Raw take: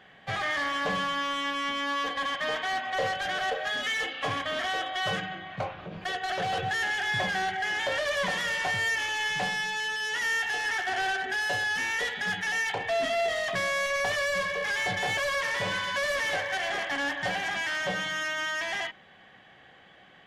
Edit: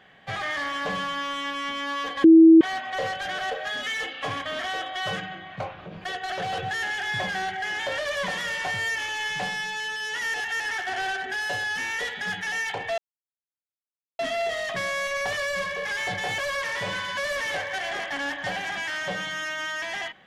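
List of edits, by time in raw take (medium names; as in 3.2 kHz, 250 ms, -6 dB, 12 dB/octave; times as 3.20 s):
2.24–2.61 s: bleep 325 Hz -8 dBFS
10.34–10.60 s: reverse
12.98 s: insert silence 1.21 s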